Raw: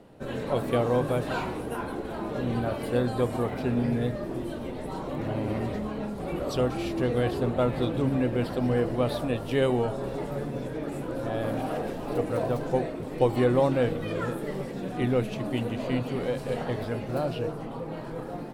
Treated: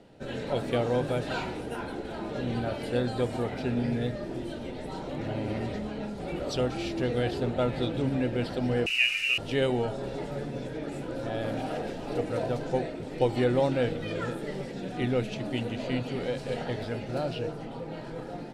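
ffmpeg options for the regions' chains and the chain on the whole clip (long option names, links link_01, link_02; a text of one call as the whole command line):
ffmpeg -i in.wav -filter_complex "[0:a]asettb=1/sr,asplit=3[link_01][link_02][link_03];[link_01]atrim=end=8.864[link_04];[link_02]atrim=start=8.86:end=9.38,asetpts=PTS-STARTPTS,afade=type=in:duration=0.004:curve=qsin,afade=type=out:start_time=0.516:duration=0.004:curve=qsin,lowpass=frequency=2600:width_type=q:width=0.5098,lowpass=frequency=2600:width_type=q:width=0.6013,lowpass=frequency=2600:width_type=q:width=0.9,lowpass=frequency=2600:width_type=q:width=2.563,afreqshift=-3000,acrusher=bits=7:dc=4:mix=0:aa=0.000001,equalizer=frequency=920:width=1.7:gain=-7.5[link_05];[link_03]atrim=start=9.376[link_06];[link_04][link_05]acrossfade=duration=0.004:curve1=hsin:curve2=qsin[link_07];[link_07][link_06]acrossfade=duration=0.004:curve1=qsin:curve2=hsin,lowpass=5600,highshelf=frequency=3400:gain=10.5,bandreject=frequency=1100:width=5.3,volume=-2.5dB" out.wav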